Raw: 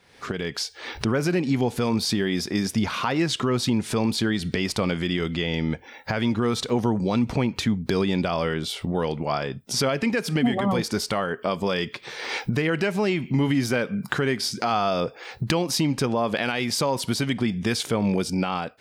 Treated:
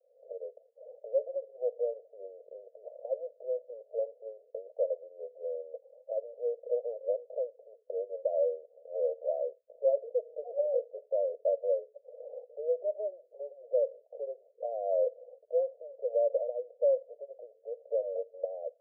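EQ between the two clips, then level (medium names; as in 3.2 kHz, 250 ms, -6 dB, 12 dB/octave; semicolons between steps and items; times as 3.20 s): steep high-pass 490 Hz 96 dB/octave; steep low-pass 630 Hz 96 dB/octave; +2.0 dB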